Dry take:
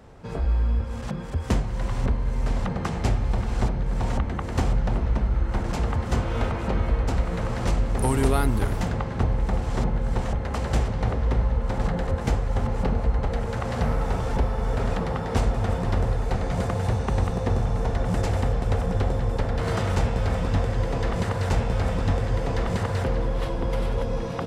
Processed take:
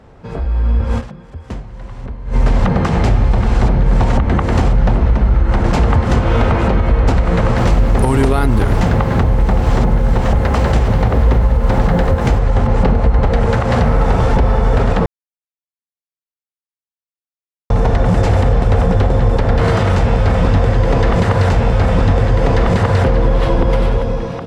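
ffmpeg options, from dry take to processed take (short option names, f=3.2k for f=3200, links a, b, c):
-filter_complex "[0:a]asettb=1/sr,asplit=3[a][b][c];[a]atrim=end=7.584[d];[b]atrim=start=7.58:end=12.39,asetpts=PTS-STARTPTS,afade=t=in:d=0.004:c=qsin,afade=t=out:st=4.806:d=0.004:c=qsin,acrusher=bits=7:mix=0:aa=0.5[e];[c]atrim=start=12.386[f];[d][e]acrossfade=d=0.004:c1=hsin:c2=qsin[g];[g][f]acrossfade=d=0.004:c1=qsin:c2=hsin,asplit=5[h][i][j][k][l];[h]atrim=end=1.33,asetpts=PTS-STARTPTS,afade=t=out:st=0.98:d=0.35:c=exp:silence=0.1[m];[i]atrim=start=1.33:end=2.01,asetpts=PTS-STARTPTS,volume=-20dB[n];[j]atrim=start=2.01:end=15.06,asetpts=PTS-STARTPTS,afade=t=in:d=0.35:c=exp:silence=0.1,afade=t=out:st=13.046:d=0.004:c=hsin[o];[k]atrim=start=15.06:end=17.7,asetpts=PTS-STARTPTS,volume=0[p];[l]atrim=start=17.7,asetpts=PTS-STARTPTS,afade=t=in:d=0.004:c=hsin[q];[m][n][o][p][q]concat=n=5:v=0:a=1,highshelf=f=6.7k:g=-12,alimiter=limit=-20.5dB:level=0:latency=1:release=139,dynaudnorm=f=150:g=9:m=11dB,volume=5.5dB"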